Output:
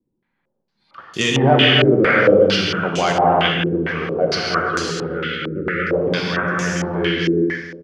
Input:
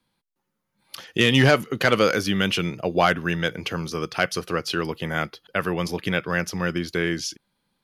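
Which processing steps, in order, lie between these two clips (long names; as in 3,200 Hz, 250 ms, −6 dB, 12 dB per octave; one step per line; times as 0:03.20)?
reverb whose tail is shaped and stops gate 480 ms flat, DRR −3.5 dB
time-frequency box erased 0:04.90–0:05.93, 560–1,200 Hz
on a send: repeating echo 153 ms, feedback 53%, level −12 dB
on the sum: low-pass on a step sequencer 4.4 Hz 360–7,000 Hz
level −2.5 dB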